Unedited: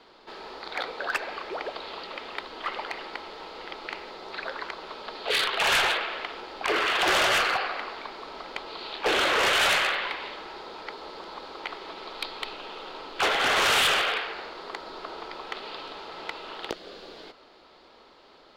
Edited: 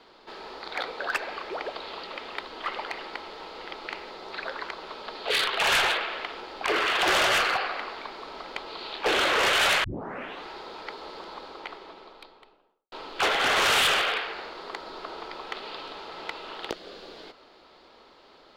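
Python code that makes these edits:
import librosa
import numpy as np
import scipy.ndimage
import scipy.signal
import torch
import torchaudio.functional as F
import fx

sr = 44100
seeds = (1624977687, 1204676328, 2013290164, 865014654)

y = fx.studio_fade_out(x, sr, start_s=11.14, length_s=1.78)
y = fx.edit(y, sr, fx.tape_start(start_s=9.84, length_s=0.6), tone=tone)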